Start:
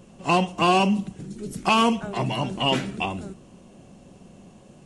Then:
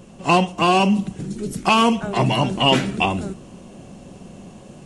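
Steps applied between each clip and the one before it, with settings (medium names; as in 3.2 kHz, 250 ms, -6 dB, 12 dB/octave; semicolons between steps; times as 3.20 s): gain riding within 3 dB 0.5 s; trim +5 dB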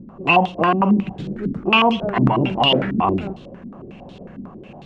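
peak limiter -10 dBFS, peak gain reduction 6.5 dB; step-sequenced low-pass 11 Hz 260–3700 Hz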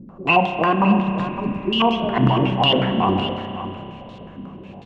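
spectral replace 1.07–1.78 s, 440–2700 Hz before; delay 560 ms -11.5 dB; spring tank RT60 3 s, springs 31 ms, chirp 65 ms, DRR 6.5 dB; trim -1.5 dB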